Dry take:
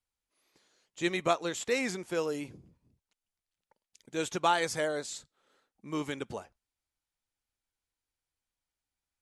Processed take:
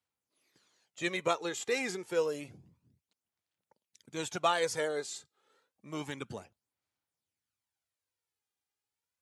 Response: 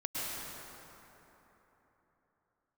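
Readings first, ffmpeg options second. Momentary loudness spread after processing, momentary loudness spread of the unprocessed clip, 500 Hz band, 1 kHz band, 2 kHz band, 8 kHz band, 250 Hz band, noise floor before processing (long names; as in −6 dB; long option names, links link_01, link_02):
14 LU, 13 LU, −1.0 dB, −3.0 dB, −1.5 dB, −1.5 dB, −5.0 dB, below −85 dBFS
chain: -af "highpass=frequency=89:width=0.5412,highpass=frequency=89:width=1.3066,aphaser=in_gain=1:out_gain=1:delay=2.5:decay=0.5:speed=0.29:type=sinusoidal,volume=-2.5dB"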